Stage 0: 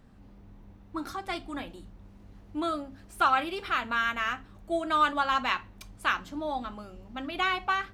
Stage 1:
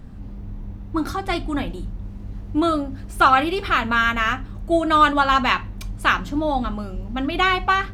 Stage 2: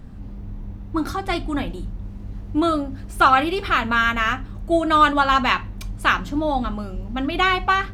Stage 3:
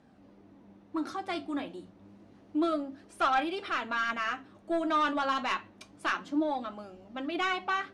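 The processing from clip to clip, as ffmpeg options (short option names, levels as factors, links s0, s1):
-af "lowshelf=f=230:g=11.5,volume=2.66"
-af anull
-af "highpass=280,equalizer=f=310:t=q:w=4:g=6,equalizer=f=620:t=q:w=4:g=4,equalizer=f=7600:t=q:w=4:g=-4,lowpass=f=9600:w=0.5412,lowpass=f=9600:w=1.3066,asoftclip=type=tanh:threshold=0.316,flanger=delay=1.2:depth=9.9:regen=61:speed=0.29:shape=sinusoidal,volume=0.501"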